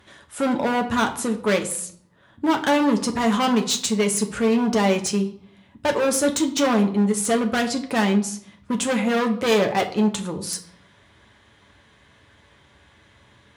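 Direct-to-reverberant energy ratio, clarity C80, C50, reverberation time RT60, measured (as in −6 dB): 3.5 dB, 16.0 dB, 12.5 dB, 0.65 s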